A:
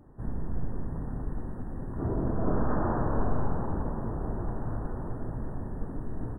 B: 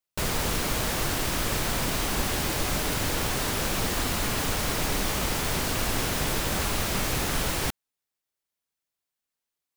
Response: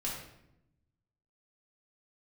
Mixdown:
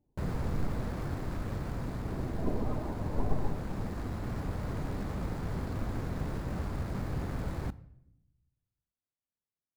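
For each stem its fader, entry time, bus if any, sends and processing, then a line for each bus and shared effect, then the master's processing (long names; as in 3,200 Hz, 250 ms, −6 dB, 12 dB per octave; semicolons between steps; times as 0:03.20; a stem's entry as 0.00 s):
+2.0 dB, 0.00 s, no send, spectral peaks only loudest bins 32; expander for the loud parts 2.5 to 1, over −37 dBFS
−13.5 dB, 0.00 s, send −18 dB, running median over 15 samples; parametric band 100 Hz +10.5 dB 3 octaves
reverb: on, RT60 0.80 s, pre-delay 4 ms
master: speech leveller 2 s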